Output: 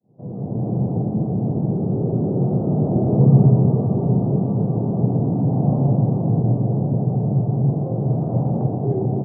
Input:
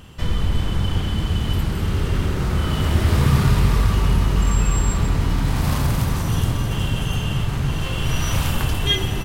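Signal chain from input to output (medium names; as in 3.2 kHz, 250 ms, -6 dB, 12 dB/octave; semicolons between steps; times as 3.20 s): fade-in on the opening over 0.69 s; Chebyshev band-pass 120–740 Hz, order 4; trim +7 dB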